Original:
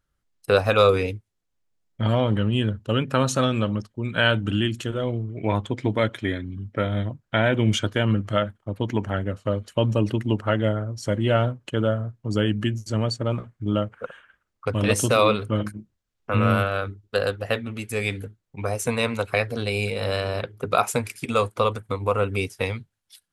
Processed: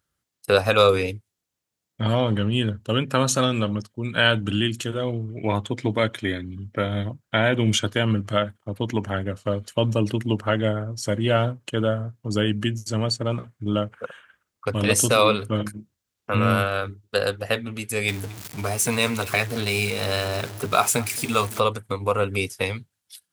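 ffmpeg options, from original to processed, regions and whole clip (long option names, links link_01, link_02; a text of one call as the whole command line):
ffmpeg -i in.wav -filter_complex "[0:a]asettb=1/sr,asplit=3[link_01][link_02][link_03];[link_01]atrim=end=18.084[link_04];[link_02]atrim=start=18.08:end=21.6,asetpts=PTS-STARTPTS,afade=type=in:duration=0.004:curve=qsin,afade=type=out:start_time=3.516:duration=0.004:curve=qsin,aeval=exprs='val(0)+0.5*0.0251*sgn(val(0))':channel_layout=same,bandreject=frequency=520:width=6,aecho=1:1:220:0.0891,atrim=end_sample=155232[link_05];[link_03]atrim=start=21.596[link_06];[link_04][link_05]acrossfade=duration=0.004:curve1=hsin:curve2=qsin[link_07];[link_07][link_06]acrossfade=duration=0.004:curve1=qsin:curve2=hsin,highpass=81,highshelf=frequency=3600:gain=7.5" out.wav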